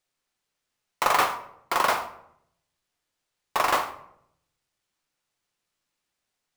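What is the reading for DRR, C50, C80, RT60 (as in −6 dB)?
6.0 dB, 12.0 dB, 14.5 dB, 0.70 s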